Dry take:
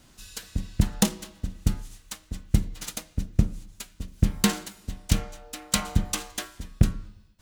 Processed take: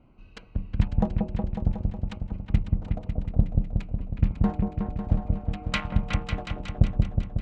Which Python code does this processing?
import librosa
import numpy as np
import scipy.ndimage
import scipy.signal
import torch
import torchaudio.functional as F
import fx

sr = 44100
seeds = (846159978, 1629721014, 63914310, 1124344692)

y = fx.wiener(x, sr, points=25)
y = fx.dynamic_eq(y, sr, hz=380.0, q=0.77, threshold_db=-40.0, ratio=4.0, max_db=-7)
y = fx.filter_lfo_lowpass(y, sr, shape='square', hz=0.57, low_hz=680.0, high_hz=2400.0, q=1.9)
y = fx.echo_opening(y, sr, ms=183, hz=750, octaves=2, feedback_pct=70, wet_db=-3)